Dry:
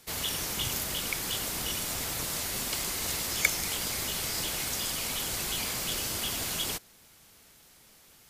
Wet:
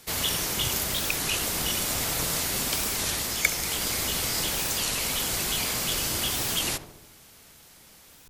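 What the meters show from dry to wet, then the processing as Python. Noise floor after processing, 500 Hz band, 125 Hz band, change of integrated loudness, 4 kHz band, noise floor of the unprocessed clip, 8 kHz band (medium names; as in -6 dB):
-53 dBFS, +5.5 dB, +5.0 dB, +4.5 dB, +4.5 dB, -58 dBFS, +4.5 dB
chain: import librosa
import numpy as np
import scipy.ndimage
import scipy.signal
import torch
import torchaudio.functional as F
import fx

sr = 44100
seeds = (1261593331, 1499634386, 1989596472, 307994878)

y = fx.rider(x, sr, range_db=10, speed_s=0.5)
y = fx.echo_filtered(y, sr, ms=69, feedback_pct=67, hz=1200.0, wet_db=-9.5)
y = fx.record_warp(y, sr, rpm=33.33, depth_cents=250.0)
y = y * librosa.db_to_amplitude(4.5)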